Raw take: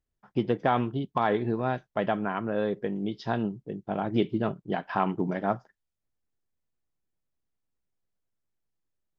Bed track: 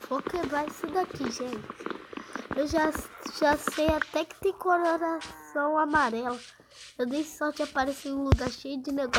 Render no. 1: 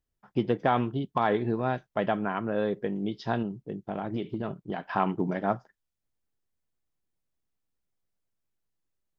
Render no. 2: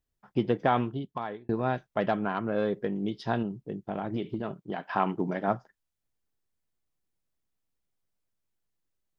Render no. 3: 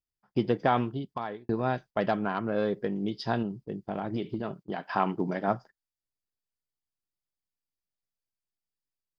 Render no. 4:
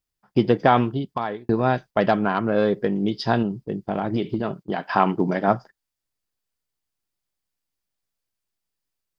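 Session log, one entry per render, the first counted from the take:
3.42–4.94 compressor, threshold -27 dBFS
0.73–1.49 fade out; 2–3.24 self-modulated delay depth 0.057 ms; 4.39–5.48 HPF 150 Hz 6 dB/oct
bell 4800 Hz +10.5 dB 0.25 oct; gate -46 dBFS, range -12 dB
gain +8 dB

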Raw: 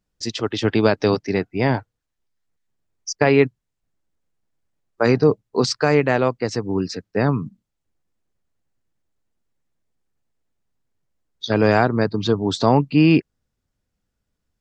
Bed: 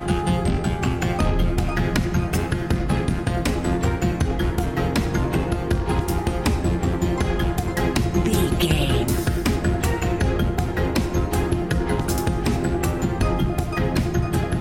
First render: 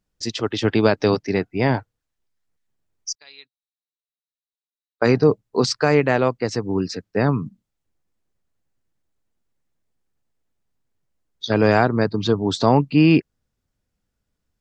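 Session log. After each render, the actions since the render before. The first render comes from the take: 3.15–5.02 band-pass 3900 Hz, Q 14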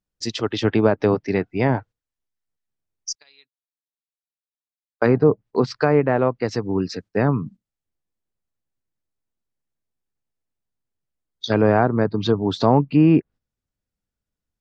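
gate -39 dBFS, range -9 dB; treble ducked by the level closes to 1400 Hz, closed at -13 dBFS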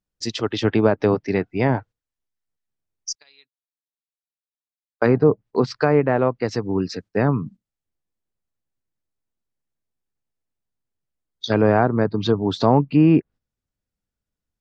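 nothing audible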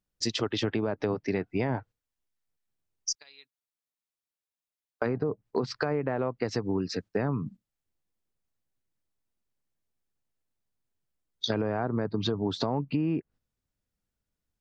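limiter -10.5 dBFS, peak gain reduction 7 dB; compressor, threshold -25 dBFS, peak gain reduction 10.5 dB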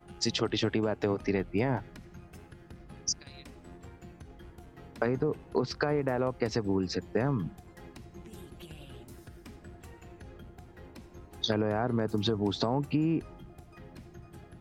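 add bed -27.5 dB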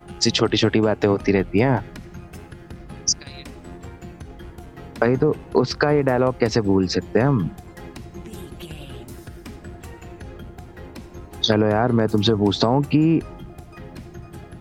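gain +11 dB; limiter -2 dBFS, peak gain reduction 1 dB

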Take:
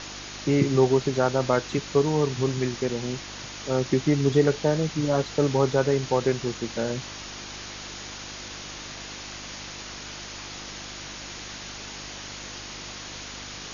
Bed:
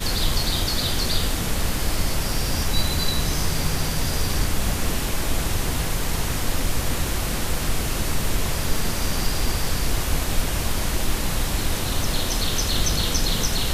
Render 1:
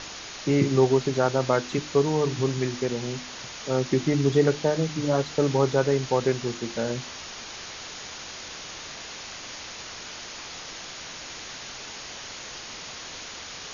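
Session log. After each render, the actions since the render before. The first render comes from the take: de-hum 50 Hz, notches 7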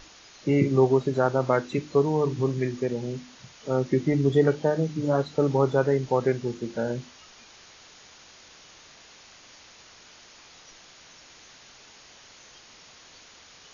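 noise print and reduce 12 dB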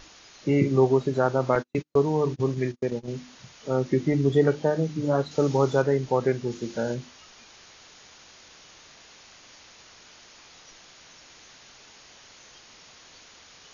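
1.55–3.08 gate -31 dBFS, range -43 dB; 5.31–5.82 high shelf 4300 Hz +11 dB; 6.51–6.95 high shelf 3800 Hz +7 dB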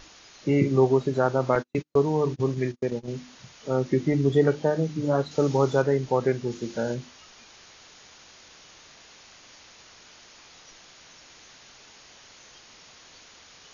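nothing audible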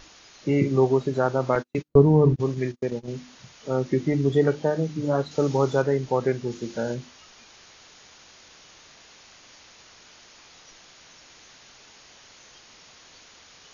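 1.88–2.36 tilt -4 dB/oct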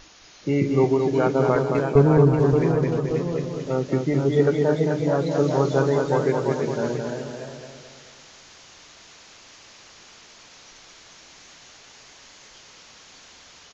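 echoes that change speed 0.684 s, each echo +1 st, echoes 2, each echo -6 dB; feedback echo 0.218 s, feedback 47%, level -5 dB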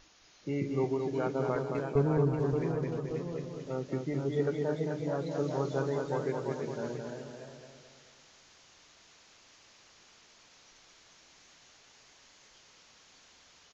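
gain -11.5 dB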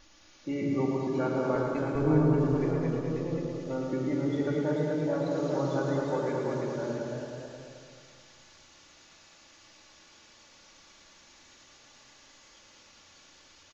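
on a send: loudspeakers at several distances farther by 38 m -6 dB, 64 m -9 dB; on the sum: shoebox room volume 3800 m³, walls furnished, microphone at 2.4 m

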